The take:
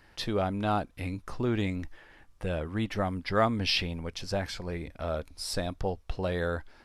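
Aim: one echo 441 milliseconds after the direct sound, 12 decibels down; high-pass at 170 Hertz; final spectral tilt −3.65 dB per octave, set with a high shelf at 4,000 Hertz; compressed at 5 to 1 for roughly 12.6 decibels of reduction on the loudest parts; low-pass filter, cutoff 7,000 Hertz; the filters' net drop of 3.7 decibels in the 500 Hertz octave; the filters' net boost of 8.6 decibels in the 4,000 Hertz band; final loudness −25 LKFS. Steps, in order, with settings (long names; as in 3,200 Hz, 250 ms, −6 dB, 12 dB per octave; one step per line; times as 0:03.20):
high-pass filter 170 Hz
low-pass filter 7,000 Hz
parametric band 500 Hz −5 dB
high-shelf EQ 4,000 Hz +6.5 dB
parametric band 4,000 Hz +7.5 dB
downward compressor 5 to 1, threshold −30 dBFS
single-tap delay 441 ms −12 dB
level +10.5 dB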